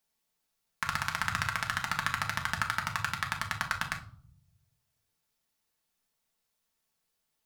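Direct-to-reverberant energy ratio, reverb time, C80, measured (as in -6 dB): 1.0 dB, 0.55 s, 17.0 dB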